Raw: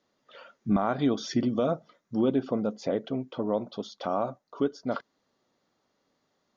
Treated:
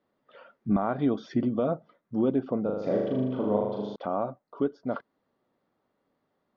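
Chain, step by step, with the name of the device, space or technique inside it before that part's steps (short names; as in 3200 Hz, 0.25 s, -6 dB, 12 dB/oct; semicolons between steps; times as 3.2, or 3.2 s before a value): phone in a pocket (LPF 3500 Hz 12 dB/oct; high shelf 2400 Hz -10 dB); 2.62–3.96 flutter echo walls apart 6.7 m, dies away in 1.1 s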